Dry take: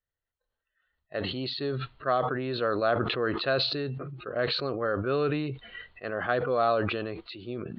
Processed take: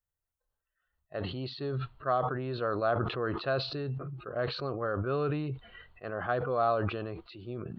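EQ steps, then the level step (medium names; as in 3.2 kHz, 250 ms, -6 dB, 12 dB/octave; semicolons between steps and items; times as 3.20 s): graphic EQ 250/500/2000/4000 Hz -6/-5/-9/-10 dB; +2.0 dB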